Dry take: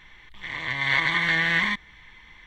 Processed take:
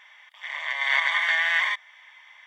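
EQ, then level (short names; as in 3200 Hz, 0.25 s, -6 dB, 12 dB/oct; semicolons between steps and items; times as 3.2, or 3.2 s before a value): brick-wall FIR high-pass 540 Hz; Butterworth band-stop 4100 Hz, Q 6.8; 0.0 dB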